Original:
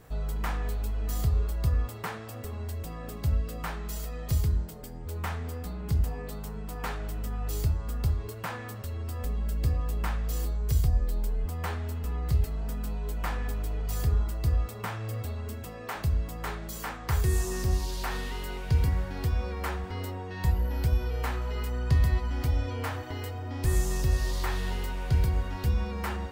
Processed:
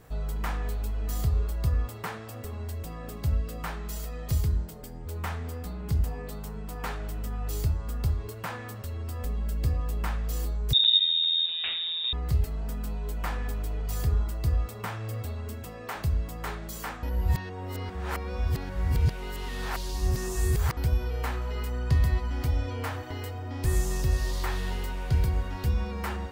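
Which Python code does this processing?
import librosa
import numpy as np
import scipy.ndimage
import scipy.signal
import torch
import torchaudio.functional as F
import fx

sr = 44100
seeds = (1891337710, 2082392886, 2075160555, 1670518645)

y = fx.freq_invert(x, sr, carrier_hz=3700, at=(10.73, 12.13))
y = fx.edit(y, sr, fx.reverse_span(start_s=17.03, length_s=3.74), tone=tone)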